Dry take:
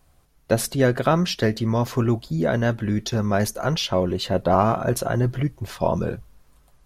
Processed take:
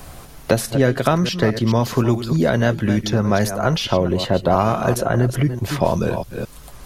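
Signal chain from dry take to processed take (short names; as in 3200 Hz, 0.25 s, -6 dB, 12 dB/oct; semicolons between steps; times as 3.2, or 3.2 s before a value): reverse delay 0.215 s, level -12 dB; three-band squash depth 70%; gain +3 dB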